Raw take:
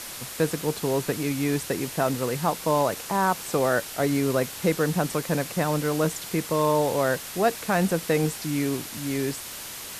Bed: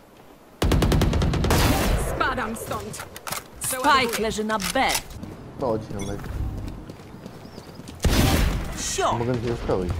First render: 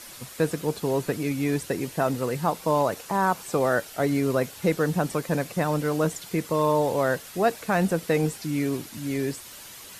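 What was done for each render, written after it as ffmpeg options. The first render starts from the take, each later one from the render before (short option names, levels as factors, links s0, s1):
-af "afftdn=nr=8:nf=-38"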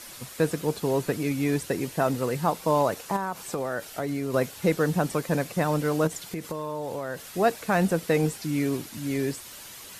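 -filter_complex "[0:a]asettb=1/sr,asplit=3[s0][s1][s2];[s0]atrim=end=3.164[s3];[s1]atrim=start=3.16:end=4.34,asetpts=PTS-STARTPTS,afade=t=in:d=0.004:c=qsin,afade=t=out:st=1.176:d=0.004:c=qsin,acompressor=threshold=0.0562:ratio=6:attack=3.2:release=140:knee=1:detection=peak[s4];[s2]atrim=start=4.336[s5];[s3][s4]acrossfade=d=0.004:c1=hsin:c2=qsin[s6];[s6][s5]acrossfade=d=0.004:c1=qsin:c2=hsin,asettb=1/sr,asplit=3[s7][s8][s9];[s7]atrim=end=6.074[s10];[s8]atrim=start=6.07:end=7.3,asetpts=PTS-STARTPTS,afade=t=in:d=0.004:c=qsin,afade=t=out:st=1.226:d=0.004:c=qsin,acompressor=threshold=0.0398:ratio=6:attack=3.2:release=140:knee=1:detection=peak[s11];[s9]atrim=start=7.296[s12];[s10][s11]acrossfade=d=0.004:c1=hsin:c2=qsin[s13];[s13][s12]acrossfade=d=0.004:c1=qsin:c2=hsin"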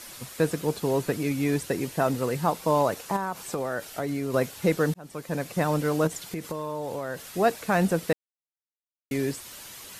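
-filter_complex "[0:a]asplit=4[s0][s1][s2][s3];[s0]atrim=end=4.94,asetpts=PTS-STARTPTS,afade=t=out:st=4.936:d=0.004:c=hsin[s4];[s1]atrim=start=4.94:end=8.13,asetpts=PTS-STARTPTS,afade=t=in:d=0.67,afade=t=out:st=3.186:d=0.004:c=hsin[s5];[s2]atrim=start=8.13:end=9.11,asetpts=PTS-STARTPTS,volume=0[s6];[s3]atrim=start=9.11,asetpts=PTS-STARTPTS,afade=t=in:d=0.004:c=hsin[s7];[s4][s5][s6][s7]concat=n=4:v=0:a=1"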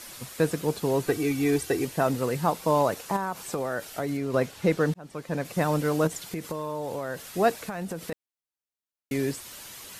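-filter_complex "[0:a]asettb=1/sr,asplit=3[s0][s1][s2];[s0]atrim=end=1.074[s3];[s1]atrim=start=1.07:end=1.85,asetpts=PTS-STARTPTS,afade=t=in:d=0.004:c=qsin,afade=t=out:st=0.776:d=0.004:c=qsin,aecho=1:1:2.6:0.65,atrim=end_sample=34398[s4];[s2]atrim=start=1.846[s5];[s3][s4]acrossfade=d=0.004:c1=hsin:c2=qsin[s6];[s6][s5]acrossfade=d=0.004:c1=qsin:c2=hsin,asettb=1/sr,asplit=3[s7][s8][s9];[s7]atrim=end=4.174[s10];[s8]atrim=start=4.17:end=5.45,asetpts=PTS-STARTPTS,afade=t=in:d=0.004:c=qsin,afade=t=out:st=1.276:d=0.004:c=qsin,highshelf=f=8300:g=-11[s11];[s9]atrim=start=5.446[s12];[s10][s11]acrossfade=d=0.004:c1=hsin:c2=qsin[s13];[s13][s12]acrossfade=d=0.004:c1=qsin:c2=hsin,asplit=3[s14][s15][s16];[s14]afade=t=out:st=7.62:d=0.02[s17];[s15]acompressor=threshold=0.0355:ratio=12:attack=3.2:release=140:knee=1:detection=peak,afade=t=in:st=7.62:d=0.02,afade=t=out:st=8.12:d=0.02[s18];[s16]afade=t=in:st=8.12:d=0.02[s19];[s17][s18][s19]amix=inputs=3:normalize=0"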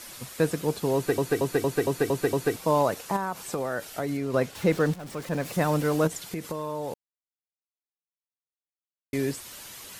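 -filter_complex "[0:a]asettb=1/sr,asplit=3[s0][s1][s2];[s0]atrim=end=4.554[s3];[s1]atrim=start=4.55:end=6.08,asetpts=PTS-STARTPTS,afade=t=in:d=0.004:c=qsin,afade=t=out:st=1.526:d=0.004:c=qsin,aeval=exprs='val(0)+0.5*0.0106*sgn(val(0))':c=same[s4];[s2]atrim=start=6.076[s5];[s3][s4]acrossfade=d=0.004:c1=hsin:c2=qsin[s6];[s6][s5]acrossfade=d=0.004:c1=qsin:c2=hsin,asplit=10[s7][s8][s9][s10][s11][s12][s13][s14][s15][s16];[s7]atrim=end=1.182[s17];[s8]atrim=start=0.948:end=1.182[s18];[s9]atrim=start=0.948:end=1.182[s19];[s10]atrim=start=0.948:end=1.182[s20];[s11]atrim=start=0.948:end=1.182[s21];[s12]atrim=start=0.948:end=1.182[s22];[s13]atrim=start=0.948:end=1.182[s23];[s14]atrim=start=2.558:end=6.94,asetpts=PTS-STARTPTS,afade=t=out:st=4.378:d=0.004:c=hsin[s24];[s15]atrim=start=6.94:end=9.13,asetpts=PTS-STARTPTS,volume=0[s25];[s16]atrim=start=9.13,asetpts=PTS-STARTPTS,afade=t=in:d=0.004:c=hsin[s26];[s17][s18]acrossfade=d=0.004:c1=hsin:c2=hsin[s27];[s27][s19]acrossfade=d=0.004:c1=hsin:c2=hsin[s28];[s28][s20]acrossfade=d=0.004:c1=hsin:c2=hsin[s29];[s29][s21]acrossfade=d=0.004:c1=hsin:c2=hsin[s30];[s30][s22]acrossfade=d=0.004:c1=hsin:c2=hsin[s31];[s31][s23]acrossfade=d=0.004:c1=hsin:c2=hsin[s32];[s24][s25][s26]concat=n=3:v=0:a=1[s33];[s32][s33]acrossfade=d=0.004:c1=hsin:c2=hsin"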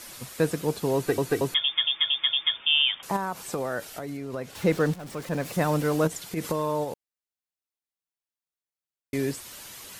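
-filter_complex "[0:a]asettb=1/sr,asplit=3[s0][s1][s2];[s0]atrim=end=1.544[s3];[s1]atrim=start=1.54:end=3.03,asetpts=PTS-STARTPTS,afade=t=in:d=0.004:c=qsin,afade=t=out:st=1.486:d=0.004:c=qsin,lowpass=f=3100:t=q:w=0.5098,lowpass=f=3100:t=q:w=0.6013,lowpass=f=3100:t=q:w=0.9,lowpass=f=3100:t=q:w=2.563,afreqshift=-3700[s4];[s2]atrim=start=3.026[s5];[s3][s4]acrossfade=d=0.004:c1=hsin:c2=qsin[s6];[s6][s5]acrossfade=d=0.004:c1=qsin:c2=hsin,asettb=1/sr,asplit=3[s7][s8][s9];[s7]atrim=end=3.854[s10];[s8]atrim=start=3.85:end=4.53,asetpts=PTS-STARTPTS,afade=t=in:d=0.004:c=qsin,afade=t=out:st=0.676:d=0.004:c=qsin,acompressor=threshold=0.0224:ratio=2.5:attack=3.2:release=140:knee=1:detection=peak[s11];[s9]atrim=start=4.526[s12];[s10][s11]acrossfade=d=0.004:c1=hsin:c2=qsin[s13];[s13][s12]acrossfade=d=0.004:c1=qsin:c2=hsin,asplit=3[s14][s15][s16];[s14]afade=t=out:st=6.36:d=0.02[s17];[s15]acontrast=35,afade=t=in:st=6.36:d=0.02,afade=t=out:st=6.83:d=0.02[s18];[s16]afade=t=in:st=6.83:d=0.02[s19];[s17][s18][s19]amix=inputs=3:normalize=0"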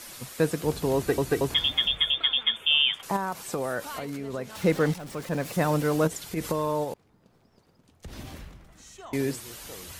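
-filter_complex "[1:a]volume=0.0794[s0];[0:a][s0]amix=inputs=2:normalize=0"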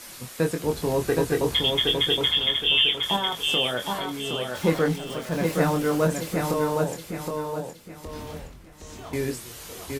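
-filter_complex "[0:a]asplit=2[s0][s1];[s1]adelay=24,volume=0.531[s2];[s0][s2]amix=inputs=2:normalize=0,asplit=2[s3][s4];[s4]aecho=0:1:767|1534|2301|3068:0.631|0.215|0.0729|0.0248[s5];[s3][s5]amix=inputs=2:normalize=0"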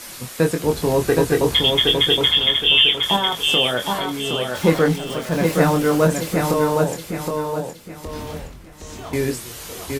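-af "volume=2"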